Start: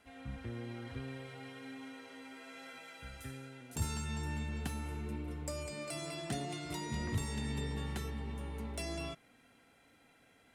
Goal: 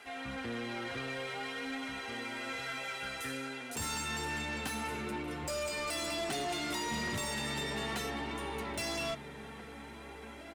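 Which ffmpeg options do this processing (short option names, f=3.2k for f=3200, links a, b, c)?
-filter_complex "[0:a]flanger=delay=2.4:depth=3.7:regen=51:speed=0.47:shape=triangular,asplit=2[a][b];[b]highpass=f=720:p=1,volume=25dB,asoftclip=type=tanh:threshold=-28dB[c];[a][c]amix=inputs=2:normalize=0,lowpass=f=7k:p=1,volume=-6dB,asplit=2[d][e];[e]adelay=1633,volume=-8dB,highshelf=f=4k:g=-36.7[f];[d][f]amix=inputs=2:normalize=0"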